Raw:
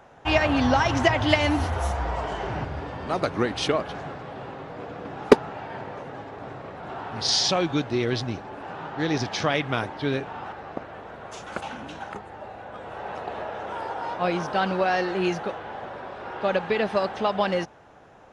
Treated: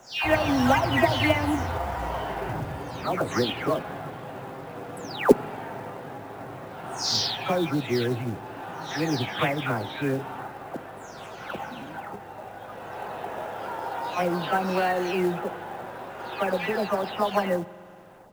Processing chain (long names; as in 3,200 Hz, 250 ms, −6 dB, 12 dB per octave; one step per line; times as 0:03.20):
every frequency bin delayed by itself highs early, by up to 350 ms
high-shelf EQ 8,000 Hz −7.5 dB
log-companded quantiser 6 bits
spring reverb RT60 2.4 s, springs 45 ms, chirp 55 ms, DRR 18.5 dB